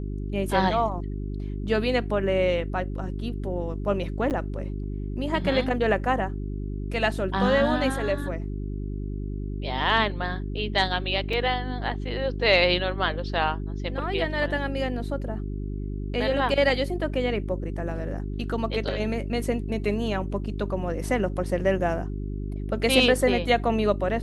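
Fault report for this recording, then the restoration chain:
hum 50 Hz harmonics 8 -31 dBFS
4.30–4.31 s: dropout 8.6 ms
11.33 s: dropout 3.3 ms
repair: de-hum 50 Hz, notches 8; interpolate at 4.30 s, 8.6 ms; interpolate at 11.33 s, 3.3 ms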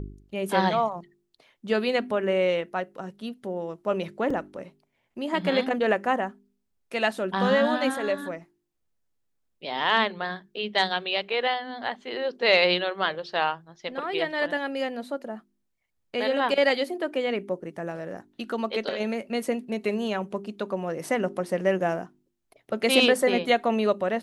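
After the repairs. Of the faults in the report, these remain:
nothing left

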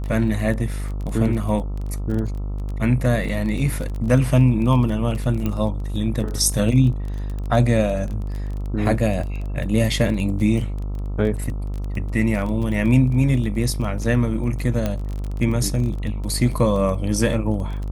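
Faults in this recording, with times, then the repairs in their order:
buzz 50 Hz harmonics 27 -26 dBFS
crackle 21 per s -27 dBFS
5.46 s: pop -12 dBFS
14.86 s: pop -10 dBFS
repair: de-click; de-hum 50 Hz, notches 27

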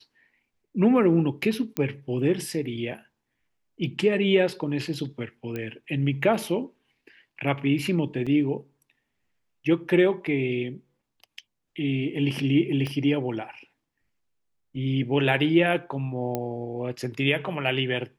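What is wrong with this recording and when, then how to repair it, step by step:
1.77 s: pop -12 dBFS
5.56 s: pop -19 dBFS
8.26–8.27 s: dropout 5.7 ms
12.87 s: pop -18 dBFS
16.35 s: pop -14 dBFS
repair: de-click; interpolate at 8.26 s, 5.7 ms

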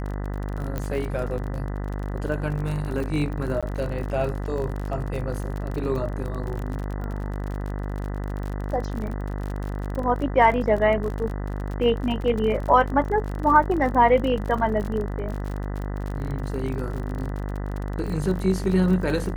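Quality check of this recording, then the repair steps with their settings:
buzz 50 Hz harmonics 40 -29 dBFS
crackle 42 per s -30 dBFS
0.78 s: pop -15 dBFS
3.61–3.63 s: dropout 16 ms
12.22 s: dropout 2.3 ms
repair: de-click; de-hum 50 Hz, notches 40; interpolate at 3.61 s, 16 ms; interpolate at 12.22 s, 2.3 ms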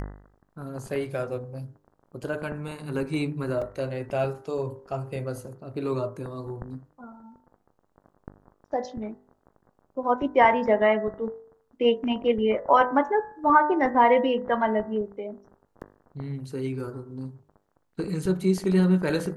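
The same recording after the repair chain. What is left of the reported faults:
nothing left

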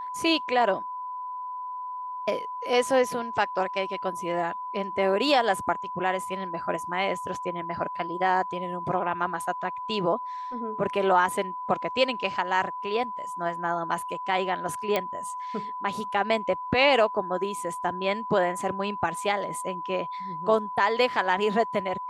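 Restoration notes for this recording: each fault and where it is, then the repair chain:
whine 1 kHz -32 dBFS
14.96 s: pop -11 dBFS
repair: de-click; band-stop 1 kHz, Q 30

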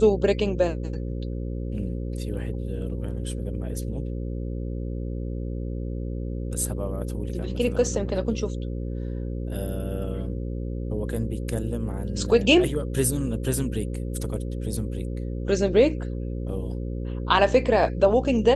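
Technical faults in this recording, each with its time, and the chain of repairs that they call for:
buzz 60 Hz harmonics 9 -30 dBFS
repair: de-hum 60 Hz, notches 9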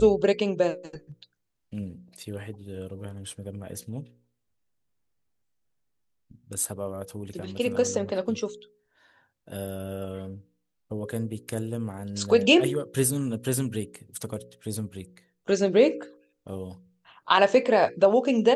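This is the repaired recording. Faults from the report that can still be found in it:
nothing left

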